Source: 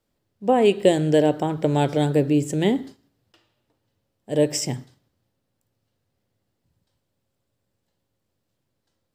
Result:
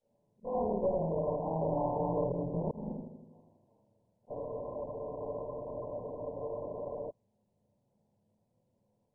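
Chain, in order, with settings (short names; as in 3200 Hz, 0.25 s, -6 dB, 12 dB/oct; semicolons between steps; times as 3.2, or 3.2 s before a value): short-time reversal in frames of 75 ms; shoebox room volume 150 m³, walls furnished, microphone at 4.3 m; dynamic EQ 930 Hz, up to +4 dB, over -31 dBFS, Q 0.75; compressor 16:1, threshold -25 dBFS, peak gain reduction 21.5 dB; speaker cabinet 100–3800 Hz, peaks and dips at 200 Hz +7 dB, 310 Hz -6 dB, 570 Hz +7 dB, 1100 Hz +4 dB; darkening echo 81 ms, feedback 62%, low-pass 2300 Hz, level -4 dB; tube stage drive 21 dB, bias 0.8; auto swell 0.198 s; spectral freeze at 4.35, 2.75 s; gain -3 dB; MP2 8 kbps 22050 Hz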